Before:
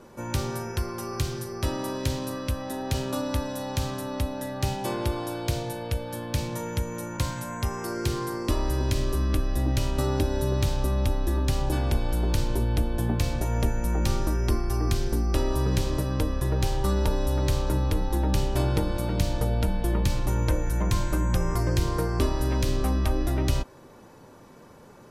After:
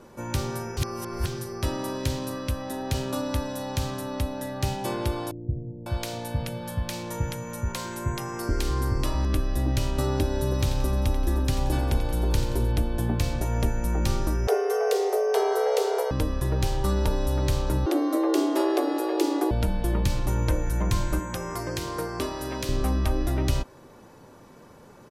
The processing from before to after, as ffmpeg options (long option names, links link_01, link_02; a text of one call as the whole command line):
ffmpeg -i in.wav -filter_complex "[0:a]asettb=1/sr,asplit=3[link_01][link_02][link_03];[link_01]atrim=end=5.314[link_04];[link_02]atrim=start=5.31:end=9.25,asetpts=PTS-STARTPTS,afade=type=in:duration=0.004:curve=qsin,afade=type=out:start_time=3.936:duration=0.004:curve=qsin,acrossover=split=360[link_05][link_06];[link_06]adelay=550[link_07];[link_05][link_07]amix=inputs=2:normalize=0,atrim=end_sample=173754[link_08];[link_03]atrim=start=9.246[link_09];[link_04][link_08]acrossfade=duration=0.004:curve1=hsin:curve2=qsin[link_10];[link_10][link_09]acrossfade=duration=0.004:curve1=qsin:curve2=hsin,asplit=3[link_11][link_12][link_13];[link_11]afade=type=out:start_time=10.5:duration=0.02[link_14];[link_12]aecho=1:1:88|176|264|352|440:0.282|0.132|0.0623|0.0293|0.0138,afade=type=in:start_time=10.5:duration=0.02,afade=type=out:start_time=12.71:duration=0.02[link_15];[link_13]afade=type=in:start_time=12.71:duration=0.02[link_16];[link_14][link_15][link_16]amix=inputs=3:normalize=0,asettb=1/sr,asplit=3[link_17][link_18][link_19];[link_17]atrim=end=14.474[link_20];[link_18]atrim=start=14.47:end=16.11,asetpts=PTS-STARTPTS,afade=type=in:duration=0.004:curve=qsin,afade=type=out:start_time=1.636:duration=0.004:curve=qsin,afreqshift=370[link_21];[link_19]atrim=start=16.106[link_22];[link_20][link_21]acrossfade=duration=0.004:curve1=hsin:curve2=qsin[link_23];[link_23][link_22]acrossfade=duration=0.004:curve1=qsin:curve2=hsin,asettb=1/sr,asplit=3[link_24][link_25][link_26];[link_24]atrim=end=17.864[link_27];[link_25]atrim=start=17.86:end=19.51,asetpts=PTS-STARTPTS,afade=type=in:duration=0.004:curve=qsin,afade=type=out:start_time=1.646:duration=0.004:curve=qsin,afreqshift=260[link_28];[link_26]atrim=start=19.506[link_29];[link_27][link_28]acrossfade=duration=0.004:curve1=hsin:curve2=qsin[link_30];[link_30][link_29]acrossfade=duration=0.004:curve1=qsin:curve2=hsin,asettb=1/sr,asplit=3[link_31][link_32][link_33];[link_31]atrim=end=21.194[link_34];[link_32]atrim=start=21.19:end=22.69,asetpts=PTS-STARTPTS,afade=type=in:duration=0.004:curve=qsin,afade=type=out:start_time=1.496:duration=0.004:curve=qsin,highpass=frequency=340:poles=1[link_35];[link_33]atrim=start=22.686[link_36];[link_34][link_35]acrossfade=duration=0.004:curve1=hsin:curve2=qsin[link_37];[link_37][link_36]acrossfade=duration=0.004:curve1=qsin:curve2=hsin,asplit=3[link_38][link_39][link_40];[link_38]atrim=end=0.772[link_41];[link_39]atrim=start=0.768:end=1.262,asetpts=PTS-STARTPTS,areverse[link_42];[link_40]atrim=start=1.258[link_43];[link_41][link_42]acrossfade=duration=0.004:curve1=hsin:curve2=hsin[link_44];[link_44][link_43]acrossfade=duration=0.004:curve1=hsin:curve2=hsin" out.wav